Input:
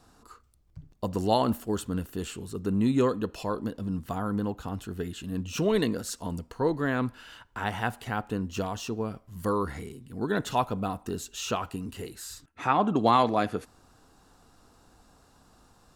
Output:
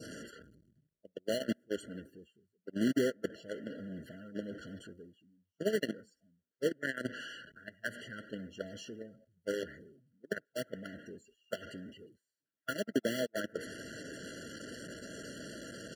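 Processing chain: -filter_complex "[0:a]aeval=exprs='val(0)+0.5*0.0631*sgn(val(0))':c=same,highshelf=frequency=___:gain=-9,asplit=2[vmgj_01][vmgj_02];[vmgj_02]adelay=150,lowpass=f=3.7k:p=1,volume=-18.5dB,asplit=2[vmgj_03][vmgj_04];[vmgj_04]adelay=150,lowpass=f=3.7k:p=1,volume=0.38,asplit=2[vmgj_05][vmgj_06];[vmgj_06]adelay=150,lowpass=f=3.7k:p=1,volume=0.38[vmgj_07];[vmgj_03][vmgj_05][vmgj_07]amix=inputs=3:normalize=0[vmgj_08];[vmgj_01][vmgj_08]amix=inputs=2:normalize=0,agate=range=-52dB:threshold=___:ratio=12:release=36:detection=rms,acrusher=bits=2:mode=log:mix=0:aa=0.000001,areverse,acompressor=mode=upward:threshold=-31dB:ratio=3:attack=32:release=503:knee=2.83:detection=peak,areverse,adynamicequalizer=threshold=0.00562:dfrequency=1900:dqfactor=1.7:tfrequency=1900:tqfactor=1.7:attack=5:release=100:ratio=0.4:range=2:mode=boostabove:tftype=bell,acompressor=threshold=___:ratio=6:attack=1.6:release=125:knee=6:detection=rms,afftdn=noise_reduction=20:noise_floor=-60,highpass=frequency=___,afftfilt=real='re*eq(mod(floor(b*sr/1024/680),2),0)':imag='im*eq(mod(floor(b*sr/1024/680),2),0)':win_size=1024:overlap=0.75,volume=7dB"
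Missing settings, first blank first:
11k, -20dB, -31dB, 170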